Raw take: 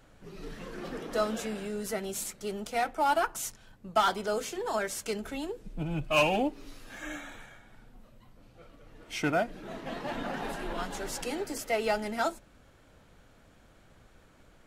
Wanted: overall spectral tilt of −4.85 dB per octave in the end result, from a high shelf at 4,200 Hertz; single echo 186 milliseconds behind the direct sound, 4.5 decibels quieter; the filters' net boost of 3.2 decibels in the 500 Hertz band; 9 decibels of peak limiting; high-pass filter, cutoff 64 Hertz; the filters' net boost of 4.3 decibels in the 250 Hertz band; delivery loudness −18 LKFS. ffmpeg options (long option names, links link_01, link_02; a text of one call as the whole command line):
ffmpeg -i in.wav -af "highpass=64,equalizer=frequency=250:width_type=o:gain=4.5,equalizer=frequency=500:width_type=o:gain=3.5,highshelf=frequency=4200:gain=-9,alimiter=limit=-22dB:level=0:latency=1,aecho=1:1:186:0.596,volume=14.5dB" out.wav